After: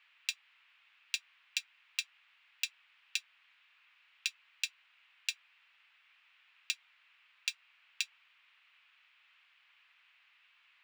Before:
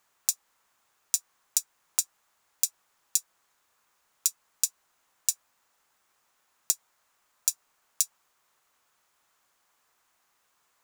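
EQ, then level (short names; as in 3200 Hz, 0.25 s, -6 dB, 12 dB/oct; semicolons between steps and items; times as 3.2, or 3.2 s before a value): resonant high-pass 2600 Hz, resonance Q 2.9; air absorption 450 m; bell 13000 Hz -12 dB 0.76 oct; +13.5 dB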